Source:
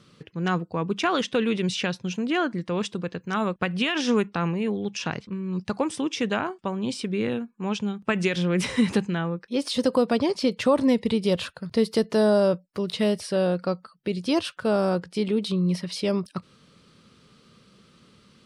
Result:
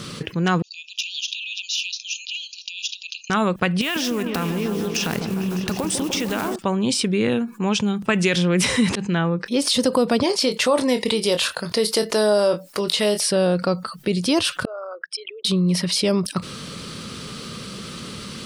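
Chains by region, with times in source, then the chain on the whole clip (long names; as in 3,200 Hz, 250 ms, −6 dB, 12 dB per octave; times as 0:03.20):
0:00.62–0:03.30: downward compressor 12 to 1, threshold −32 dBFS + linear-phase brick-wall band-pass 2,400–7,100 Hz + saturating transformer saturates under 1,900 Hz
0:03.81–0:06.56: one scale factor per block 5 bits + downward compressor 5 to 1, threshold −32 dBFS + echo whose low-pass opens from repeat to repeat 151 ms, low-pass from 750 Hz, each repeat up 1 octave, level −6 dB
0:08.89–0:09.46: volume swells 190 ms + high-frequency loss of the air 60 metres
0:10.23–0:13.30: bass and treble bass −14 dB, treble +2 dB + double-tracking delay 24 ms −11 dB
0:14.65–0:15.45: spectral envelope exaggerated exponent 3 + inverse Chebyshev high-pass filter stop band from 210 Hz, stop band 80 dB + notch filter 4,400 Hz, Q 5.2
whole clip: high-shelf EQ 5,200 Hz +8.5 dB; envelope flattener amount 50%; level +1.5 dB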